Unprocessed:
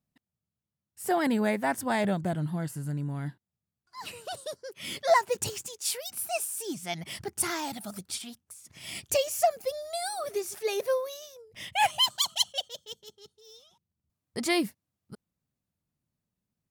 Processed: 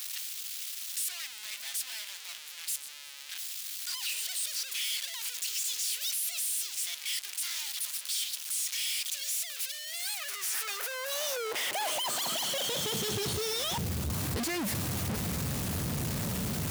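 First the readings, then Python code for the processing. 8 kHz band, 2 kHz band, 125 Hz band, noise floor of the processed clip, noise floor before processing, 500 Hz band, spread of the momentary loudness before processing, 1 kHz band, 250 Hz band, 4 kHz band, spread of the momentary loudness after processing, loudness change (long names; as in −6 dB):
+4.0 dB, −2.5 dB, +0.5 dB, −45 dBFS, below −85 dBFS, −9.5 dB, 17 LU, −9.5 dB, −6.0 dB, 0.0 dB, 6 LU, −2.0 dB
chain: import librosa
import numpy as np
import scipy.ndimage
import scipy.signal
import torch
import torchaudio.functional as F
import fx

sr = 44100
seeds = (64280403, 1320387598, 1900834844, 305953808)

y = np.sign(x) * np.sqrt(np.mean(np.square(x)))
y = fx.filter_sweep_highpass(y, sr, from_hz=3100.0, to_hz=64.0, start_s=9.81, end_s=13.66, q=1.1)
y = fx.echo_warbled(y, sr, ms=363, feedback_pct=70, rate_hz=2.8, cents=181, wet_db=-22.0)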